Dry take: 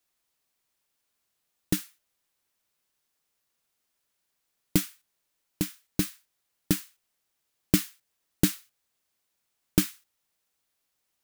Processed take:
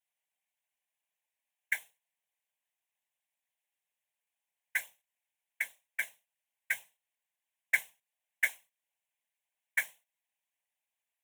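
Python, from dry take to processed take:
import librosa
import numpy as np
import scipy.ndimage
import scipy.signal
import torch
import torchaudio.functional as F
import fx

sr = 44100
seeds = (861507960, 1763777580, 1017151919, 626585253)

y = x * np.sin(2.0 * np.pi * 1900.0 * np.arange(len(x)) / sr)
y = fx.weighting(y, sr, curve='A')
y = fx.whisperise(y, sr, seeds[0])
y = fx.fixed_phaser(y, sr, hz=1300.0, stages=6)
y = F.gain(torch.from_numpy(y), -3.0).numpy()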